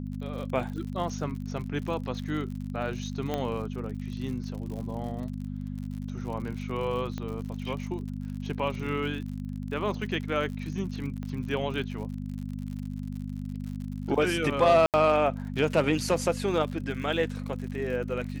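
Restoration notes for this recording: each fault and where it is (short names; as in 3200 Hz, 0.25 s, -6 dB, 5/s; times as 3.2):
crackle 72/s -37 dBFS
hum 50 Hz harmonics 5 -35 dBFS
3.34 pop -16 dBFS
7.18 pop -22 dBFS
11.23 pop -26 dBFS
14.86–14.94 gap 78 ms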